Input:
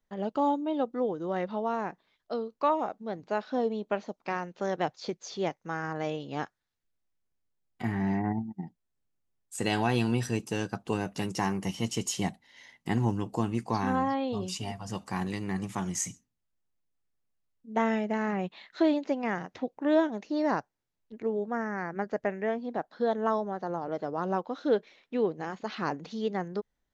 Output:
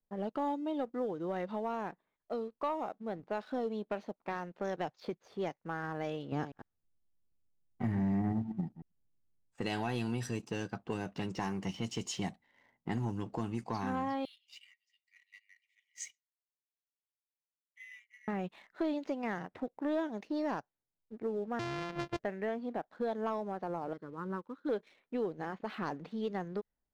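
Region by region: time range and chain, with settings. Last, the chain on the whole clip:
0:06.32–0:09.55: delay that plays each chunk backwards 100 ms, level −13.5 dB + low-shelf EQ 430 Hz +10.5 dB
0:14.25–0:18.28: Chebyshev high-pass filter 1,900 Hz, order 10 + notch filter 2,600 Hz, Q 16
0:21.59–0:22.19: samples sorted by size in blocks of 128 samples + low-pass filter 6,900 Hz 24 dB per octave
0:23.93–0:24.69: phaser with its sweep stopped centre 2,600 Hz, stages 6 + expander for the loud parts, over −44 dBFS
whole clip: low-pass that shuts in the quiet parts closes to 870 Hz, open at −24 dBFS; downward compressor 2 to 1, threshold −32 dBFS; leveller curve on the samples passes 1; level −5.5 dB

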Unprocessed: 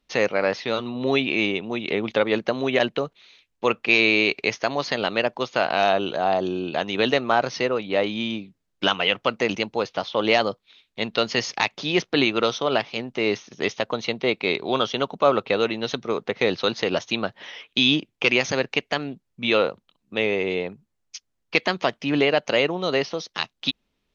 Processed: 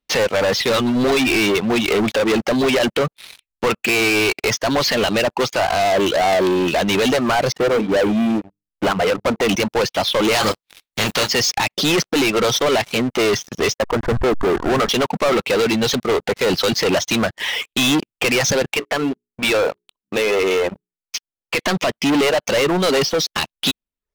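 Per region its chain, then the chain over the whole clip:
0:07.52–0:09.41: low-pass filter 1,200 Hz + mains-hum notches 50/100/150/200/250/300/350/400/450 Hz
0:10.31–0:11.27: compressing power law on the bin magnitudes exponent 0.49 + double-tracking delay 28 ms −10 dB
0:13.74–0:14.89: hold until the input has moved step −27.5 dBFS + Butterworth low-pass 1,900 Hz 96 dB per octave
0:18.71–0:21.59: bass and treble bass −10 dB, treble −7 dB + mains-hum notches 60/120/180/240/300/360/420 Hz + downward compressor 3 to 1, threshold −24 dBFS
whole clip: reverb reduction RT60 0.52 s; brickwall limiter −13 dBFS; leveller curve on the samples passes 5

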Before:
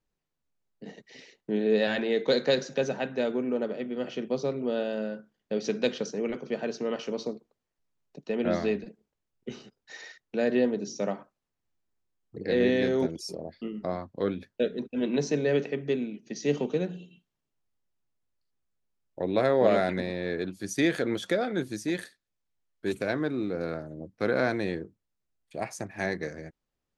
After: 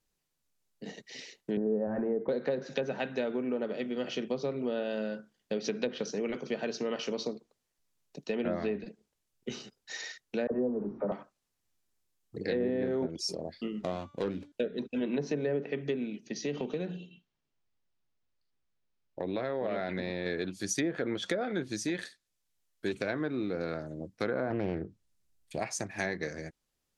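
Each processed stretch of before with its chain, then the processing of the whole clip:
0:01.57–0:02.29: low-pass filter 1,300 Hz 24 dB per octave + low-shelf EQ 160 Hz +10 dB
0:10.47–0:11.12: converter with a step at zero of −41.5 dBFS + low-pass filter 1,200 Hz 24 dB per octave + all-pass dispersion lows, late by 45 ms, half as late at 550 Hz
0:13.79–0:14.52: running median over 25 samples + hum removal 289.9 Hz, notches 33 + hard clipping −20.5 dBFS
0:16.27–0:20.26: high-frequency loss of the air 150 metres + downward compressor 2.5 to 1, threshold −29 dBFS
0:24.50–0:25.59: low-shelf EQ 240 Hz +9 dB + highs frequency-modulated by the lows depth 0.36 ms
whole clip: treble cut that deepens with the level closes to 980 Hz, closed at −20.5 dBFS; high-shelf EQ 3,100 Hz +10.5 dB; downward compressor 2.5 to 1, threshold −30 dBFS

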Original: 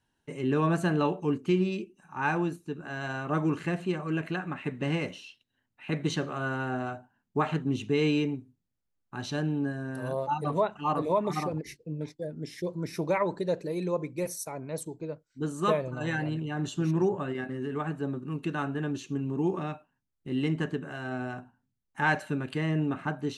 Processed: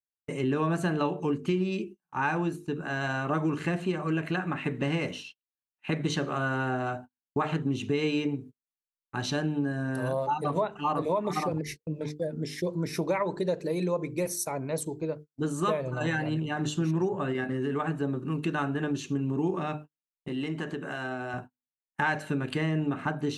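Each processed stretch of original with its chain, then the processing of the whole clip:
0:20.28–0:21.34: high-pass filter 230 Hz 6 dB per octave + downward compressor 3 to 1, threshold −35 dBFS
whole clip: mains-hum notches 50/100/150/200/250/300/350/400/450 Hz; noise gate −46 dBFS, range −39 dB; downward compressor 3 to 1, threshold −32 dBFS; level +6 dB

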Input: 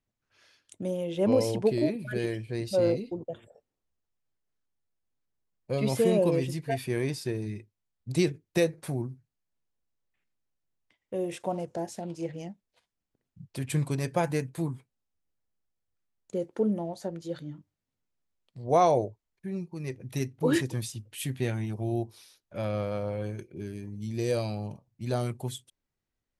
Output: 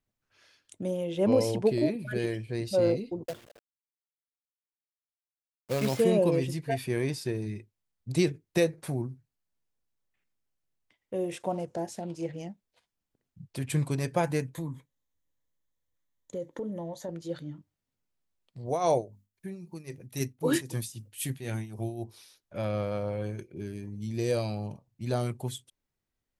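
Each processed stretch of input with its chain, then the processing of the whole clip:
0:03.26–0:06.00: low-pass filter 5,800 Hz + low-shelf EQ 85 Hz −8 dB + log-companded quantiser 4 bits
0:14.54–0:17.09: EQ curve with evenly spaced ripples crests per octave 1.1, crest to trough 8 dB + downward compressor 3 to 1, threshold −33 dBFS
0:18.66–0:22.04: high-shelf EQ 6,200 Hz +11.5 dB + mains-hum notches 50/100/150/200/250 Hz + amplitude tremolo 3.8 Hz, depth 74%
whole clip: no processing

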